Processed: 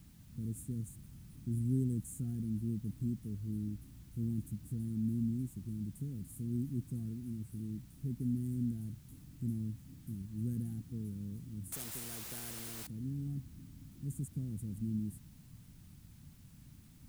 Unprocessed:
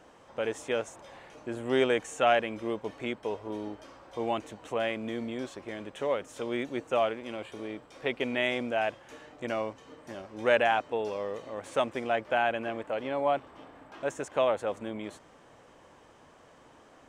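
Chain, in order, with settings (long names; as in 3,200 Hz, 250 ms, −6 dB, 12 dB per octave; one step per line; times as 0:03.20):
inverse Chebyshev band-stop filter 550–4,400 Hz, stop band 60 dB
background noise white −80 dBFS
0:11.72–0:12.87: every bin compressed towards the loudest bin 4 to 1
level +12 dB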